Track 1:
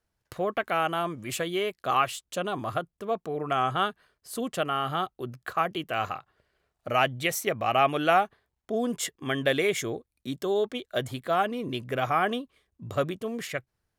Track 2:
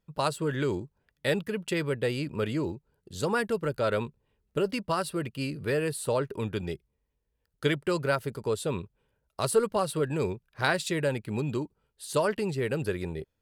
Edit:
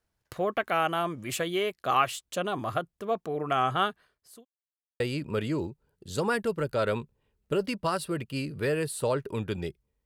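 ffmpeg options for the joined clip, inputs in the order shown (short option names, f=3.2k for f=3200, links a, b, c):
-filter_complex "[0:a]apad=whole_dur=10.05,atrim=end=10.05,asplit=2[a][b];[a]atrim=end=4.45,asetpts=PTS-STARTPTS,afade=t=out:st=3.91:d=0.54[c];[b]atrim=start=4.45:end=5,asetpts=PTS-STARTPTS,volume=0[d];[1:a]atrim=start=2.05:end=7.1,asetpts=PTS-STARTPTS,afade=t=in:d=0.004:c=hsin[e];[c][d][e]concat=n=3:v=0:a=1"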